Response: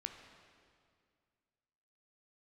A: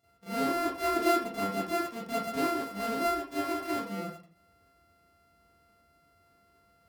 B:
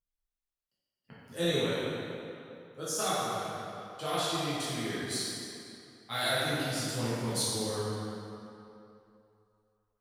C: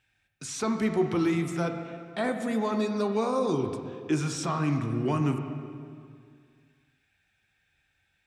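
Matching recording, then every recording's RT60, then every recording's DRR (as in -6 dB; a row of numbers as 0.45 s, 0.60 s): C; 0.45 s, 2.8 s, 2.1 s; -10.5 dB, -11.0 dB, 5.0 dB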